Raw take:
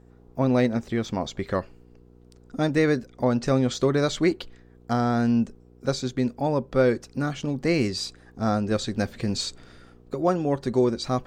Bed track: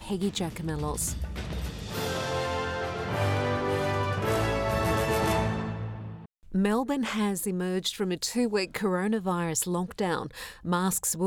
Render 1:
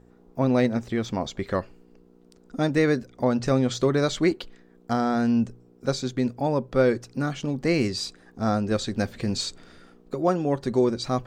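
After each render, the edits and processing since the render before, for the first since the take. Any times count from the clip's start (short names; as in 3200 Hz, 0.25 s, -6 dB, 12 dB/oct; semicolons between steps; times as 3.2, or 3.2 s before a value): de-hum 60 Hz, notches 2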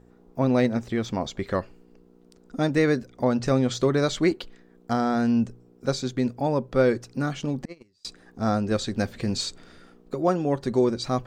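7.65–8.05 gate -18 dBFS, range -37 dB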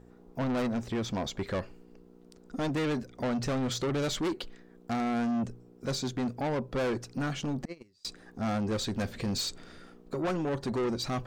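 soft clip -27 dBFS, distortion -6 dB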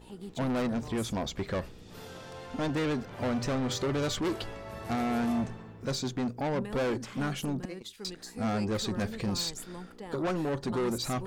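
add bed track -15 dB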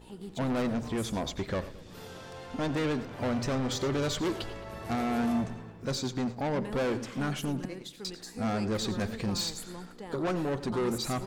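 echo 89 ms -16.5 dB; warbling echo 0.11 s, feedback 52%, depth 93 cents, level -17 dB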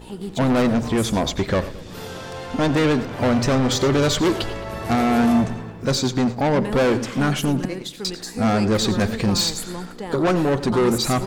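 gain +11.5 dB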